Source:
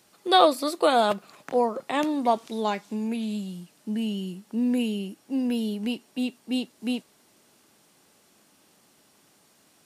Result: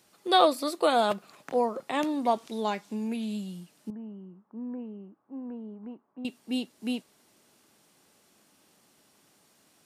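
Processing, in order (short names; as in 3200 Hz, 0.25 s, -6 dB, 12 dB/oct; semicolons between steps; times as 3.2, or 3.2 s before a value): 3.9–6.25 ladder low-pass 1300 Hz, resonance 55%; gain -3 dB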